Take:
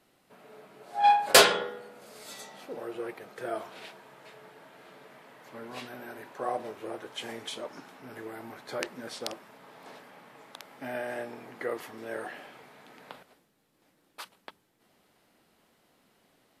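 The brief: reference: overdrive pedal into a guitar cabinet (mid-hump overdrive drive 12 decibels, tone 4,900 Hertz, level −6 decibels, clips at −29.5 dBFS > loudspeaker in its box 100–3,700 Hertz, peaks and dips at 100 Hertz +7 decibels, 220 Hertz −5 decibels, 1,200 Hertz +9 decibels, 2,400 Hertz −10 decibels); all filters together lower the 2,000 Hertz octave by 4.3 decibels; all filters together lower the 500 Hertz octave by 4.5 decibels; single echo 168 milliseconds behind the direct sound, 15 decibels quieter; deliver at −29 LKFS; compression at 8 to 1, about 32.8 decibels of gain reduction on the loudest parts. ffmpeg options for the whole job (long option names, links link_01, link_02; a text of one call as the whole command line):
ffmpeg -i in.wav -filter_complex "[0:a]equalizer=frequency=500:width_type=o:gain=-5.5,equalizer=frequency=2000:width_type=o:gain=-5,acompressor=threshold=-50dB:ratio=8,aecho=1:1:168:0.178,asplit=2[link_01][link_02];[link_02]highpass=frequency=720:poles=1,volume=12dB,asoftclip=type=tanh:threshold=-29.5dB[link_03];[link_01][link_03]amix=inputs=2:normalize=0,lowpass=frequency=4900:poles=1,volume=-6dB,highpass=100,equalizer=frequency=100:width_type=q:width=4:gain=7,equalizer=frequency=220:width_type=q:width=4:gain=-5,equalizer=frequency=1200:width_type=q:width=4:gain=9,equalizer=frequency=2400:width_type=q:width=4:gain=-10,lowpass=frequency=3700:width=0.5412,lowpass=frequency=3700:width=1.3066,volume=20dB" out.wav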